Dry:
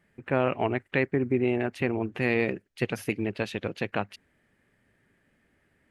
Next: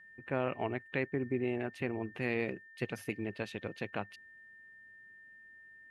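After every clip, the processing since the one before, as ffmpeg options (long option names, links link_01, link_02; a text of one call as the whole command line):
ffmpeg -i in.wav -af "aeval=exprs='val(0)+0.00562*sin(2*PI*1800*n/s)':channel_layout=same,volume=-8.5dB" out.wav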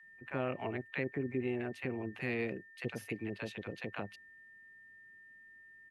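ffmpeg -i in.wav -filter_complex "[0:a]acrossover=split=720[link_01][link_02];[link_01]adelay=30[link_03];[link_03][link_02]amix=inputs=2:normalize=0,volume=-1.5dB" out.wav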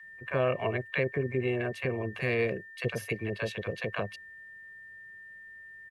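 ffmpeg -i in.wav -af "aecho=1:1:1.8:0.62,volume=7dB" out.wav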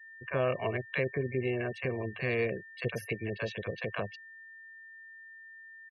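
ffmpeg -i in.wav -af "afftfilt=real='re*gte(hypot(re,im),0.00631)':imag='im*gte(hypot(re,im),0.00631)':win_size=1024:overlap=0.75,volume=-2dB" out.wav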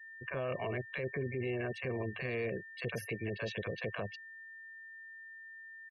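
ffmpeg -i in.wav -af "alimiter=level_in=4.5dB:limit=-24dB:level=0:latency=1:release=11,volume=-4.5dB" out.wav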